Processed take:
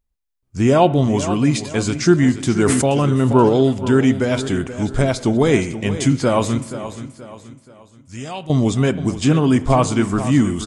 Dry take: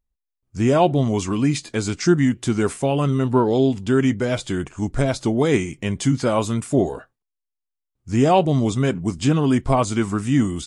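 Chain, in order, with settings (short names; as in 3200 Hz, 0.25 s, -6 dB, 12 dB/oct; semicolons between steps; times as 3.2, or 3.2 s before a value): 6.58–8.5 passive tone stack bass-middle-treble 5-5-5; feedback echo 0.478 s, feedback 40%, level -12.5 dB; spring tank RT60 1.1 s, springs 31/53 ms, chirp 65 ms, DRR 16.5 dB; 2.58–3.49 sustainer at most 21 dB/s; gain +3 dB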